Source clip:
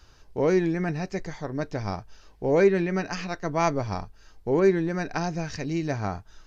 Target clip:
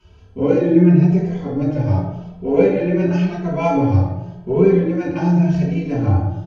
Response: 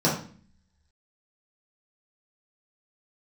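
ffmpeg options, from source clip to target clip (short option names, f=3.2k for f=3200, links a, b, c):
-filter_complex "[0:a]asplit=2[a][b];[b]asoftclip=type=tanh:threshold=-24.5dB,volume=-9.5dB[c];[a][c]amix=inputs=2:normalize=0,asplit=2[d][e];[e]adelay=103,lowpass=f=1.2k:p=1,volume=-7.5dB,asplit=2[f][g];[g]adelay=103,lowpass=f=1.2k:p=1,volume=0.54,asplit=2[h][i];[i]adelay=103,lowpass=f=1.2k:p=1,volume=0.54,asplit=2[j][k];[k]adelay=103,lowpass=f=1.2k:p=1,volume=0.54,asplit=2[l][m];[m]adelay=103,lowpass=f=1.2k:p=1,volume=0.54,asplit=2[n][o];[o]adelay=103,lowpass=f=1.2k:p=1,volume=0.54,asplit=2[p][q];[q]adelay=103,lowpass=f=1.2k:p=1,volume=0.54[r];[d][f][h][j][l][n][p][r]amix=inputs=8:normalize=0[s];[1:a]atrim=start_sample=2205,asetrate=24696,aresample=44100[t];[s][t]afir=irnorm=-1:irlink=0,asplit=2[u][v];[v]adelay=2.7,afreqshift=0.9[w];[u][w]amix=inputs=2:normalize=1,volume=-13.5dB"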